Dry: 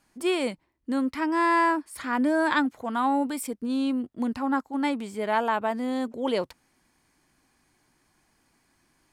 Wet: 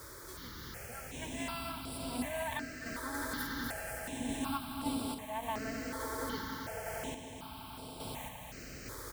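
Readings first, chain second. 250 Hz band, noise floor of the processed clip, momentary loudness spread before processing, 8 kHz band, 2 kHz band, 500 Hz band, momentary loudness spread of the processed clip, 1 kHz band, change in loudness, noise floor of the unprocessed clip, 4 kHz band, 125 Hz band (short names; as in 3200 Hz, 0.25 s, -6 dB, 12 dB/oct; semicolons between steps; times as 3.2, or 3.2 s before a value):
-14.0 dB, -48 dBFS, 8 LU, 0.0 dB, -10.5 dB, -13.0 dB, 9 LU, -14.0 dB, -13.5 dB, -69 dBFS, -5.5 dB, n/a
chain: pre-emphasis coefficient 0.8; comb 4.5 ms, depth 99%; AGC gain up to 9.5 dB; harmonic-percussive split percussive -8 dB; low shelf 110 Hz -11.5 dB; split-band echo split 610 Hz, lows 0.428 s, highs 0.252 s, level -5.5 dB; crossover distortion -34.5 dBFS; added noise pink -36 dBFS; HPF 46 Hz; swelling echo 93 ms, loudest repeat 8, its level -13 dB; random-step tremolo; step phaser 2.7 Hz 750–6400 Hz; gain -7 dB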